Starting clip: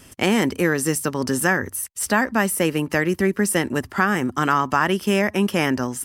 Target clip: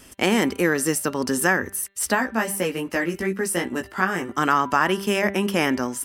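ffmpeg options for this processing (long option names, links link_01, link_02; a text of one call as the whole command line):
ffmpeg -i in.wav -filter_complex "[0:a]equalizer=frequency=120:width_type=o:width=0.86:gain=-8.5,bandreject=frequency=197.3:width_type=h:width=4,bandreject=frequency=394.6:width_type=h:width=4,bandreject=frequency=591.9:width_type=h:width=4,bandreject=frequency=789.2:width_type=h:width=4,bandreject=frequency=986.5:width_type=h:width=4,bandreject=frequency=1183.8:width_type=h:width=4,bandreject=frequency=1381.1:width_type=h:width=4,bandreject=frequency=1578.4:width_type=h:width=4,bandreject=frequency=1775.7:width_type=h:width=4,bandreject=frequency=1973:width_type=h:width=4,bandreject=frequency=2170.3:width_type=h:width=4,bandreject=frequency=2367.6:width_type=h:width=4,bandreject=frequency=2564.9:width_type=h:width=4,bandreject=frequency=2762.2:width_type=h:width=4,bandreject=frequency=2959.5:width_type=h:width=4,bandreject=frequency=3156.8:width_type=h:width=4,bandreject=frequency=3354.1:width_type=h:width=4,bandreject=frequency=3551.4:width_type=h:width=4,bandreject=frequency=3748.7:width_type=h:width=4,bandreject=frequency=3946:width_type=h:width=4,bandreject=frequency=4143.3:width_type=h:width=4,asplit=3[link_01][link_02][link_03];[link_01]afade=type=out:start_time=2.14:duration=0.02[link_04];[link_02]flanger=delay=16:depth=2:speed=2.7,afade=type=in:start_time=2.14:duration=0.02,afade=type=out:start_time=4.34:duration=0.02[link_05];[link_03]afade=type=in:start_time=4.34:duration=0.02[link_06];[link_04][link_05][link_06]amix=inputs=3:normalize=0" out.wav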